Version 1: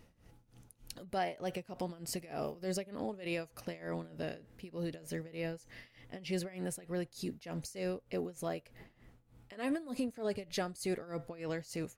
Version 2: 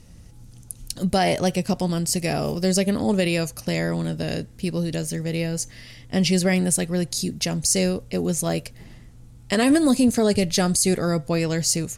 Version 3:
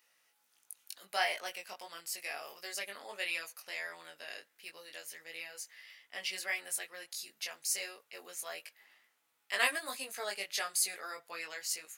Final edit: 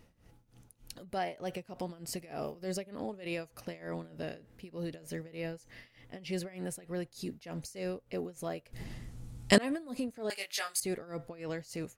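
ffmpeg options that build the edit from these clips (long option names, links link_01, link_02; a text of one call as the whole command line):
ffmpeg -i take0.wav -i take1.wav -i take2.wav -filter_complex "[0:a]asplit=3[link_01][link_02][link_03];[link_01]atrim=end=8.732[link_04];[1:a]atrim=start=8.728:end=9.582[link_05];[link_02]atrim=start=9.578:end=10.302[link_06];[2:a]atrim=start=10.298:end=10.802[link_07];[link_03]atrim=start=10.798[link_08];[link_04][link_05]acrossfade=duration=0.004:curve1=hsin:curve2=hsin[link_09];[link_09][link_06]acrossfade=duration=0.004:curve1=hsin:curve2=hsin[link_10];[link_10][link_07]acrossfade=duration=0.004:curve1=hsin:curve2=hsin[link_11];[link_11][link_08]acrossfade=duration=0.004:curve1=hsin:curve2=hsin" out.wav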